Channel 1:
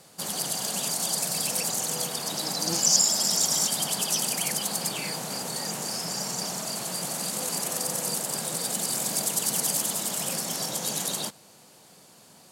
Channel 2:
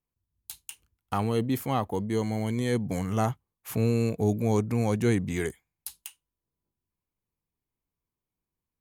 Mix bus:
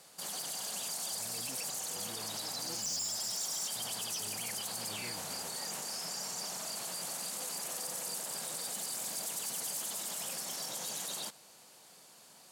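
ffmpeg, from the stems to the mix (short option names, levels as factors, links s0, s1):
-filter_complex "[0:a]lowshelf=f=390:g=-11,asoftclip=type=tanh:threshold=0.0794,volume=0.708[s0];[1:a]alimiter=limit=0.0891:level=0:latency=1,tremolo=f=1.4:d=0.64,volume=0.158[s1];[s0][s1]amix=inputs=2:normalize=0,alimiter=level_in=2.37:limit=0.0631:level=0:latency=1:release=55,volume=0.422"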